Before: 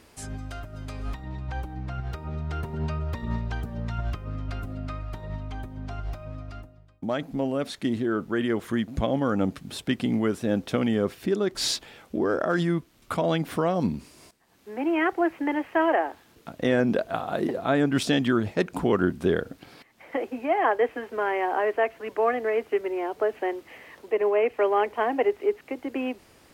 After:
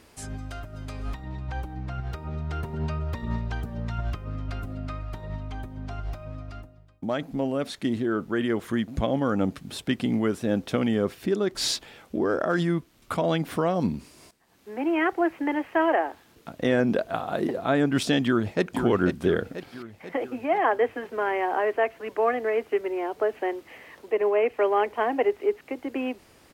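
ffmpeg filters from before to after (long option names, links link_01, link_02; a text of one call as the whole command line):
ffmpeg -i in.wav -filter_complex "[0:a]asplit=2[link_01][link_02];[link_02]afade=type=in:start_time=18.25:duration=0.01,afade=type=out:start_time=18.65:duration=0.01,aecho=0:1:490|980|1470|1960|2450|2940|3430:0.446684|0.245676|0.135122|0.074317|0.0408743|0.0224809|0.0123645[link_03];[link_01][link_03]amix=inputs=2:normalize=0" out.wav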